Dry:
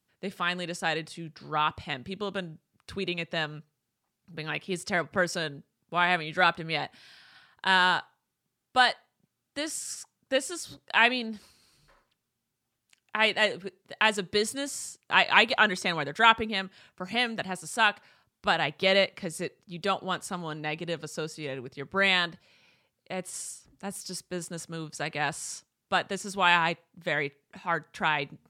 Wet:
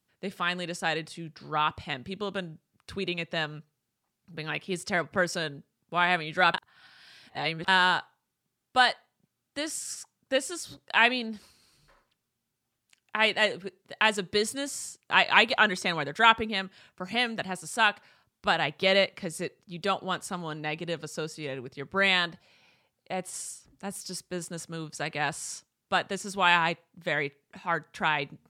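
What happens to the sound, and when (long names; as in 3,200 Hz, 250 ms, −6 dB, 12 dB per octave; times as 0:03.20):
0:06.54–0:07.68: reverse
0:22.29–0:23.37: parametric band 770 Hz +6.5 dB 0.37 octaves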